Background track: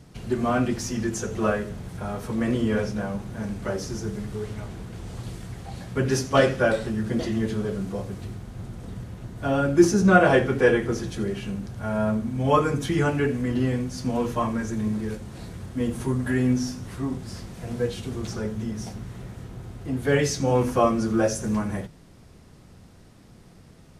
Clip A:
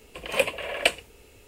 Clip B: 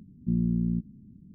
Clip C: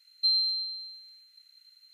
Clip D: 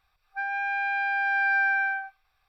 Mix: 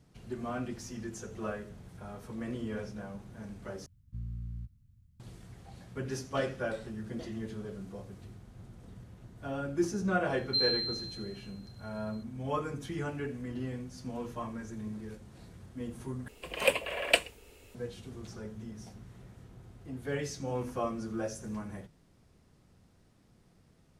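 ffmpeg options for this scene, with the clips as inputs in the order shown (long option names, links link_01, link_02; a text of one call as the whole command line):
ffmpeg -i bed.wav -i cue0.wav -i cue1.wav -i cue2.wav -filter_complex "[0:a]volume=-13.5dB[link_01];[2:a]firequalizer=gain_entry='entry(100,0);entry(180,-24);entry(310,-28);entry(720,-20);entry(1000,7)':delay=0.05:min_phase=1[link_02];[link_01]asplit=3[link_03][link_04][link_05];[link_03]atrim=end=3.864[link_06];[link_02]atrim=end=1.34,asetpts=PTS-STARTPTS,volume=-2.5dB[link_07];[link_04]atrim=start=5.196:end=16.284[link_08];[1:a]atrim=end=1.47,asetpts=PTS-STARTPTS,volume=-3dB[link_09];[link_05]atrim=start=17.746[link_10];[3:a]atrim=end=1.93,asetpts=PTS-STARTPTS,volume=-4.5dB,afade=type=in:duration=0.004:curve=hsin,afade=type=out:start_time=1.926:duration=0.004:curve=hsin,adelay=10300[link_11];[link_06][link_07]acrossfade=duration=0.004:curve1=hsin:curve2=hsin[link_12];[link_12][link_08]acrossfade=duration=0.004:curve1=hsin:curve2=hsin[link_13];[link_13][link_09]acrossfade=duration=0.004:curve1=hsin:curve2=hsin[link_14];[link_14][link_10]acrossfade=duration=0.004:curve1=hsin:curve2=hsin[link_15];[link_15][link_11]amix=inputs=2:normalize=0" out.wav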